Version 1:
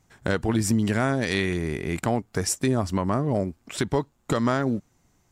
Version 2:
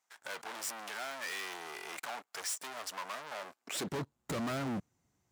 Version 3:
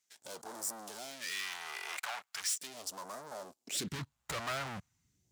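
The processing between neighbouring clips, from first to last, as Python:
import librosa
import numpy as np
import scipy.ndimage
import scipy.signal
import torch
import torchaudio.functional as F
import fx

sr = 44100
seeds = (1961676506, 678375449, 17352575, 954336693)

y1 = fx.leveller(x, sr, passes=3)
y1 = 10.0 ** (-28.5 / 20.0) * np.tanh(y1 / 10.0 ** (-28.5 / 20.0))
y1 = fx.filter_sweep_highpass(y1, sr, from_hz=860.0, to_hz=75.0, start_s=3.53, end_s=4.09, q=0.87)
y1 = y1 * 10.0 ** (-6.0 / 20.0)
y2 = fx.phaser_stages(y1, sr, stages=2, low_hz=230.0, high_hz=2500.0, hz=0.39, feedback_pct=35)
y2 = y2 * 10.0 ** (2.0 / 20.0)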